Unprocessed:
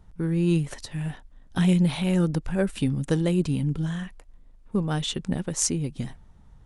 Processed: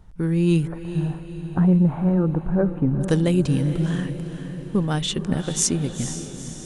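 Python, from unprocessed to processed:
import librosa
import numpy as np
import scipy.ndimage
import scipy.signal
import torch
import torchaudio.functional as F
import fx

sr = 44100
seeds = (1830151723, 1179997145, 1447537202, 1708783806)

y = fx.lowpass(x, sr, hz=1300.0, slope=24, at=(0.66, 3.0), fade=0.02)
y = fx.echo_diffused(y, sr, ms=465, feedback_pct=55, wet_db=-10)
y = y * librosa.db_to_amplitude(3.5)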